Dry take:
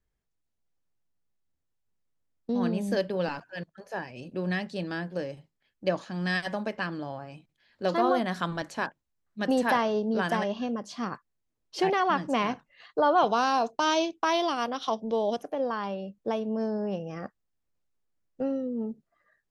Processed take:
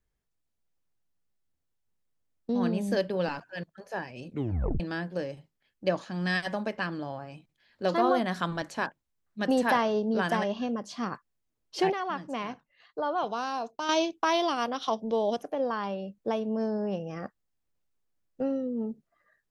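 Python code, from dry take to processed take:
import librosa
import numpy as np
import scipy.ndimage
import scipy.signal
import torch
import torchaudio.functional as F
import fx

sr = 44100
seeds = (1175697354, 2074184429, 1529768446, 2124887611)

y = fx.edit(x, sr, fx.tape_stop(start_s=4.28, length_s=0.52),
    fx.clip_gain(start_s=11.92, length_s=1.97, db=-7.5), tone=tone)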